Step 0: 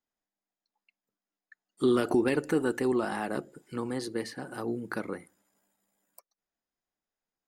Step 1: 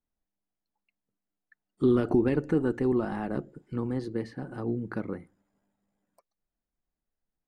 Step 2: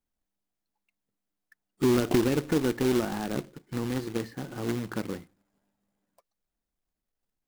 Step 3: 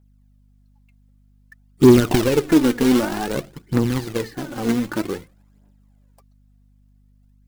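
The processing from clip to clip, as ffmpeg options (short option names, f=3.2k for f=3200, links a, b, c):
-af "aemphasis=mode=reproduction:type=riaa,volume=-3.5dB"
-af "acrusher=bits=2:mode=log:mix=0:aa=0.000001"
-af "aphaser=in_gain=1:out_gain=1:delay=4.4:decay=0.55:speed=0.53:type=triangular,aeval=exprs='val(0)+0.000891*(sin(2*PI*50*n/s)+sin(2*PI*2*50*n/s)/2+sin(2*PI*3*50*n/s)/3+sin(2*PI*4*50*n/s)/4+sin(2*PI*5*50*n/s)/5)':c=same,volume=7dB"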